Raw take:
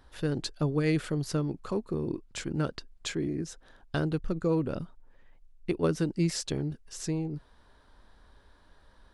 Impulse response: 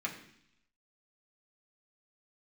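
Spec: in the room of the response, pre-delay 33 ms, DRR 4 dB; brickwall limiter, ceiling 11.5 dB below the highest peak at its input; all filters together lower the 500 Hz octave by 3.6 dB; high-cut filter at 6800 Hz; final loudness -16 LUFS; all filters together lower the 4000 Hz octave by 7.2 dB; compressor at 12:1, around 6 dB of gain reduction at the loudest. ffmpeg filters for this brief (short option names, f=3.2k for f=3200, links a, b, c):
-filter_complex "[0:a]lowpass=6.8k,equalizer=f=500:t=o:g=-4.5,equalizer=f=4k:t=o:g=-8.5,acompressor=threshold=-29dB:ratio=12,alimiter=level_in=7.5dB:limit=-24dB:level=0:latency=1,volume=-7.5dB,asplit=2[a][b];[1:a]atrim=start_sample=2205,adelay=33[c];[b][c]afir=irnorm=-1:irlink=0,volume=-7.5dB[d];[a][d]amix=inputs=2:normalize=0,volume=24.5dB"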